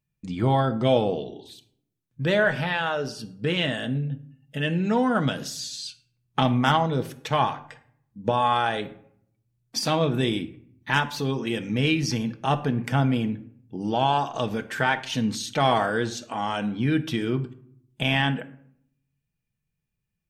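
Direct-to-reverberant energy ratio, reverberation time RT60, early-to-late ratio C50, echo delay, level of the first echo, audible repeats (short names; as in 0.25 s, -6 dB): 6.5 dB, 0.65 s, 15.5 dB, none, none, none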